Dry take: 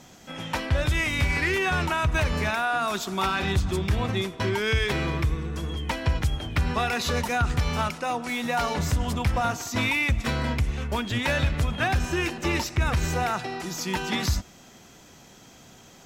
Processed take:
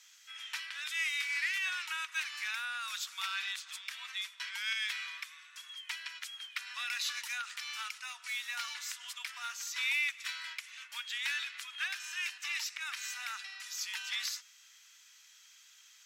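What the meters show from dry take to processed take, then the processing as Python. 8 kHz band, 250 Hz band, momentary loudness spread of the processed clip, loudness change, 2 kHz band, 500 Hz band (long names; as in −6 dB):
−5.0 dB, below −40 dB, 10 LU, −10.5 dB, −7.5 dB, below −40 dB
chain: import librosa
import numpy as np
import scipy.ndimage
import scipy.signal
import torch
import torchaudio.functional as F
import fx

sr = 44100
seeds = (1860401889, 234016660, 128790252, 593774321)

y = scipy.signal.sosfilt(scipy.signal.bessel(6, 2300.0, 'highpass', norm='mag', fs=sr, output='sos'), x)
y = fx.high_shelf(y, sr, hz=7400.0, db=-5.0)
y = y * librosa.db_to_amplitude(-2.5)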